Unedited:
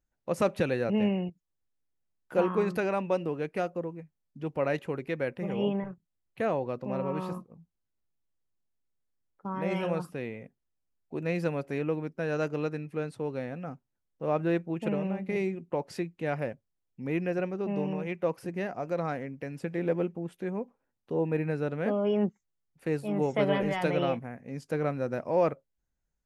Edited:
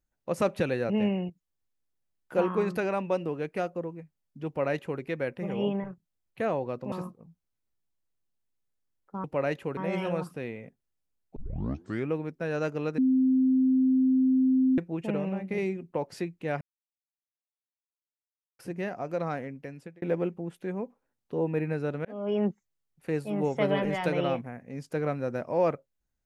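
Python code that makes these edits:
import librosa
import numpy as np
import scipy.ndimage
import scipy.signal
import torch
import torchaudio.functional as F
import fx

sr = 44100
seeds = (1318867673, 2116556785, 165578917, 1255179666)

y = fx.edit(x, sr, fx.duplicate(start_s=4.47, length_s=0.53, to_s=9.55),
    fx.cut(start_s=6.92, length_s=0.31),
    fx.tape_start(start_s=11.14, length_s=0.74),
    fx.bleep(start_s=12.76, length_s=1.8, hz=260.0, db=-19.5),
    fx.silence(start_s=16.39, length_s=1.98),
    fx.fade_out_span(start_s=19.1, length_s=0.7, curve='qsin'),
    fx.fade_in_span(start_s=21.83, length_s=0.32), tone=tone)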